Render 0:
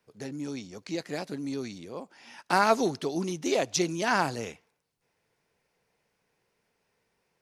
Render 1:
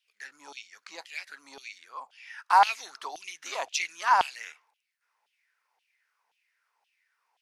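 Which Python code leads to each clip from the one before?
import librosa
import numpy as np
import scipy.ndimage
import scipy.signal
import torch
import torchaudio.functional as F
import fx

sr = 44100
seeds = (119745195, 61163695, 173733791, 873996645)

y = fx.filter_lfo_highpass(x, sr, shape='saw_down', hz=1.9, low_hz=780.0, high_hz=3200.0, q=5.9)
y = y * 10.0 ** (-4.5 / 20.0)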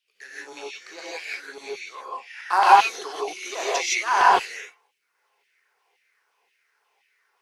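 y = fx.peak_eq(x, sr, hz=390.0, db=11.5, octaves=0.68)
y = fx.notch(y, sr, hz=930.0, q=18.0)
y = fx.rev_gated(y, sr, seeds[0], gate_ms=190, shape='rising', drr_db=-7.0)
y = y * 10.0 ** (-1.0 / 20.0)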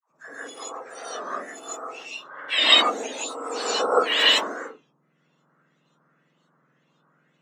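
y = fx.octave_mirror(x, sr, pivot_hz=1700.0)
y = fx.dispersion(y, sr, late='lows', ms=114.0, hz=600.0)
y = fx.record_warp(y, sr, rpm=33.33, depth_cents=100.0)
y = y * 10.0 ** (3.0 / 20.0)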